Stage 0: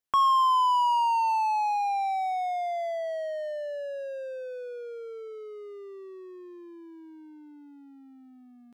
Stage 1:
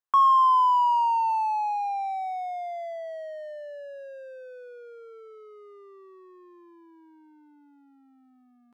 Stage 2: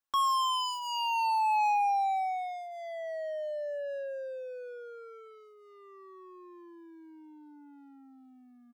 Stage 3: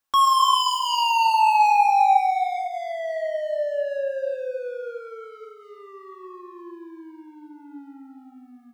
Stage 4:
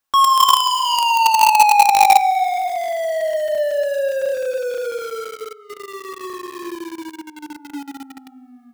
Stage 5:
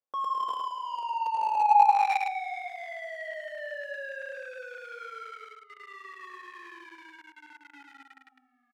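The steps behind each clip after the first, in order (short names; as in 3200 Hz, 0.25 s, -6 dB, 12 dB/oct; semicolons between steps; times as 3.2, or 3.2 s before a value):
bell 1100 Hz +12 dB 1.1 oct; gain -8.5 dB
hard clip -29 dBFS, distortion -4 dB; comb 3.6 ms, depth 61%
non-linear reverb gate 0.41 s flat, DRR 3.5 dB; gain +8.5 dB
in parallel at -7 dB: companded quantiser 2-bit; on the sum: maximiser +4 dB; gain -1 dB
on a send: echo 0.106 s -4 dB; on the sum: band-pass sweep 490 Hz -> 1800 Hz, 1.55–2.17; gain -5.5 dB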